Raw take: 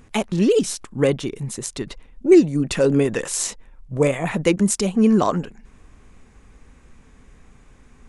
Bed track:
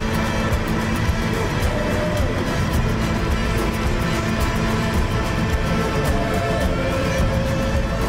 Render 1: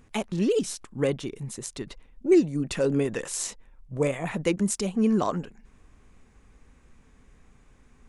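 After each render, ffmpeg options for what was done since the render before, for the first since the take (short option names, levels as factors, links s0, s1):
-af "volume=0.447"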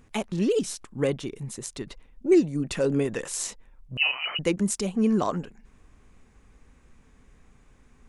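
-filter_complex "[0:a]asettb=1/sr,asplit=3[s0][s1][s2];[s0]atrim=end=3.974[s3];[s1]atrim=start=3.97:end=4.39,asetpts=PTS-STARTPTS,afade=t=in:d=0.004:c=qsin,afade=t=out:st=0.416:d=0.004:c=qsin,lowpass=f=2600:t=q:w=0.5098,lowpass=f=2600:t=q:w=0.6013,lowpass=f=2600:t=q:w=0.9,lowpass=f=2600:t=q:w=2.563,afreqshift=-3100[s4];[s2]atrim=start=4.386[s5];[s3][s4]acrossfade=d=0.004:c1=hsin:c2=qsin[s6];[s6][s5]acrossfade=d=0.004:c1=qsin:c2=hsin"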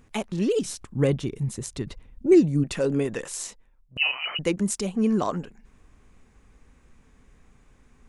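-filter_complex "[0:a]asettb=1/sr,asplit=3[s0][s1][s2];[s0]atrim=end=0.654[s3];[s1]atrim=start=0.65:end=2.64,asetpts=PTS-STARTPTS,afade=t=in:d=0.004:c=qsin,afade=t=out:st=1.986:d=0.004:c=qsin,equalizer=f=78:w=0.46:g=11.5[s4];[s2]atrim=start=2.636[s5];[s3][s4]acrossfade=d=0.004:c1=hsin:c2=qsin[s6];[s6][s5]acrossfade=d=0.004:c1=qsin:c2=hsin,asplit=2[s7][s8];[s7]atrim=end=3.96,asetpts=PTS-STARTPTS,afade=t=out:st=3.14:d=0.82:silence=0.158489[s9];[s8]atrim=start=3.96,asetpts=PTS-STARTPTS,afade=t=in:d=0.004:c=hsin:silence=0.158489[s10];[s9][s10]concat=n=2:v=0:a=1"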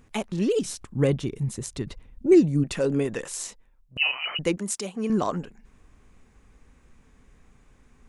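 -filter_complex "[0:a]asettb=1/sr,asplit=3[s0][s1][s2];[s0]atrim=end=4.574[s3];[s1]atrim=start=4.57:end=5.1,asetpts=PTS-STARTPTS,afade=t=in:d=0.004:c=qsin,afade=t=out:st=0.526:d=0.004:c=qsin,highpass=f=450:p=1[s4];[s2]atrim=start=5.096[s5];[s3][s4]acrossfade=d=0.004:c1=hsin:c2=qsin[s6];[s6][s5]acrossfade=d=0.004:c1=qsin:c2=hsin"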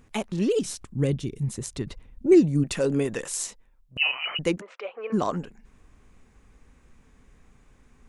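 -filter_complex "[0:a]asplit=3[s0][s1][s2];[s0]afade=t=out:st=0.84:d=0.02[s3];[s1]equalizer=f=1000:t=o:w=2.2:g=-9.5,afade=t=in:st=0.84:d=0.02,afade=t=out:st=1.42:d=0.02[s4];[s2]afade=t=in:st=1.42:d=0.02[s5];[s3][s4][s5]amix=inputs=3:normalize=0,asettb=1/sr,asplit=3[s6][s7][s8];[s6]atrim=end=2.554[s9];[s7]atrim=start=2.55:end=3.46,asetpts=PTS-STARTPTS,afade=t=in:d=0.004:c=qsin,afade=t=out:st=0.906:d=0.004:c=qsin,highshelf=f=4700:g=4.5[s10];[s8]atrim=start=3.456[s11];[s9][s10]acrossfade=d=0.004:c1=hsin:c2=qsin[s12];[s12][s11]acrossfade=d=0.004:c1=qsin:c2=hsin,asplit=3[s13][s14][s15];[s13]afade=t=out:st=4.6:d=0.02[s16];[s14]highpass=f=500:w=0.5412,highpass=f=500:w=1.3066,equalizer=f=510:t=q:w=4:g=10,equalizer=f=1300:t=q:w=4:g=6,equalizer=f=2400:t=q:w=4:g=4,lowpass=f=2700:w=0.5412,lowpass=f=2700:w=1.3066,afade=t=in:st=4.6:d=0.02,afade=t=out:st=5.12:d=0.02[s17];[s15]afade=t=in:st=5.12:d=0.02[s18];[s16][s17][s18]amix=inputs=3:normalize=0"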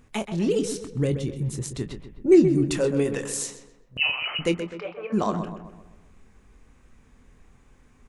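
-filter_complex "[0:a]asplit=2[s0][s1];[s1]adelay=24,volume=0.299[s2];[s0][s2]amix=inputs=2:normalize=0,asplit=2[s3][s4];[s4]adelay=128,lowpass=f=2500:p=1,volume=0.376,asplit=2[s5][s6];[s6]adelay=128,lowpass=f=2500:p=1,volume=0.49,asplit=2[s7][s8];[s8]adelay=128,lowpass=f=2500:p=1,volume=0.49,asplit=2[s9][s10];[s10]adelay=128,lowpass=f=2500:p=1,volume=0.49,asplit=2[s11][s12];[s12]adelay=128,lowpass=f=2500:p=1,volume=0.49,asplit=2[s13][s14];[s14]adelay=128,lowpass=f=2500:p=1,volume=0.49[s15];[s3][s5][s7][s9][s11][s13][s15]amix=inputs=7:normalize=0"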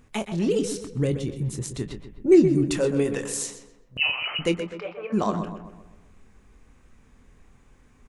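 -af "aecho=1:1:118:0.126"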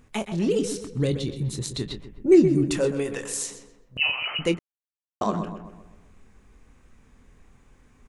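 -filter_complex "[0:a]asettb=1/sr,asplit=3[s0][s1][s2];[s0]atrim=end=1.004[s3];[s1]atrim=start=1:end=2.01,asetpts=PTS-STARTPTS,afade=t=in:d=0.004:c=qsin,afade=t=out:st=1.006:d=0.004:c=qsin,equalizer=f=4000:t=o:w=0.44:g=13[s4];[s2]atrim=start=2.006[s5];[s3][s4]acrossfade=d=0.004:c1=hsin:c2=qsin[s6];[s6][s5]acrossfade=d=0.004:c1=qsin:c2=hsin,asettb=1/sr,asplit=3[s7][s8][s9];[s7]atrim=end=2.924[s10];[s8]atrim=start=2.92:end=3.51,asetpts=PTS-STARTPTS,afade=t=in:d=0.004:c=qsin,afade=t=out:st=0.586:d=0.004:c=qsin,equalizer=f=190:w=0.47:g=-6.5[s11];[s9]atrim=start=3.506[s12];[s10][s11]acrossfade=d=0.004:c1=hsin:c2=qsin[s13];[s13][s12]acrossfade=d=0.004:c1=qsin:c2=hsin,asplit=3[s14][s15][s16];[s14]atrim=end=4.59,asetpts=PTS-STARTPTS,afade=t=out:st=4.586:d=0.004:c=hsin[s17];[s15]atrim=start=4.59:end=5.21,asetpts=PTS-STARTPTS,volume=0[s18];[s16]atrim=start=5.21,asetpts=PTS-STARTPTS,afade=t=in:d=0.004:c=hsin[s19];[s17][s18][s19]concat=n=3:v=0:a=1"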